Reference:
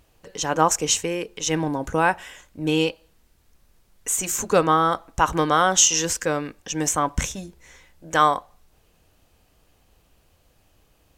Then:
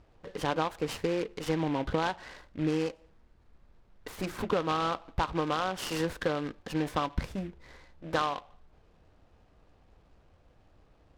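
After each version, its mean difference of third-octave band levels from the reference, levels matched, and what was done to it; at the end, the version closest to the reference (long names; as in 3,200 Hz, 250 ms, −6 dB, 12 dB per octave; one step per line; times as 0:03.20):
7.0 dB: low-pass filter 1,800 Hz 12 dB per octave
downward compressor 10 to 1, threshold −25 dBFS, peak gain reduction 13.5 dB
short delay modulated by noise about 1,900 Hz, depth 0.05 ms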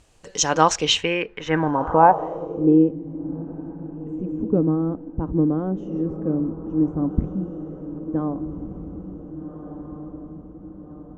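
13.5 dB: high-shelf EQ 11,000 Hz −5 dB
feedback delay with all-pass diffusion 1,577 ms, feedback 52%, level −9.5 dB
low-pass filter sweep 8,100 Hz → 270 Hz, 0:00.22–0:02.96
level +2 dB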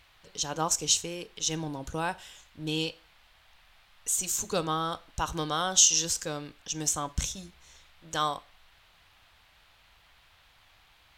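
3.5 dB: graphic EQ with 10 bands 250 Hz −5 dB, 500 Hz −5 dB, 1,000 Hz −4 dB, 2,000 Hz −10 dB, 4,000 Hz +8 dB
noise in a band 620–3,900 Hz −57 dBFS
four-comb reverb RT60 0.32 s, combs from 30 ms, DRR 19 dB
level −5.5 dB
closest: third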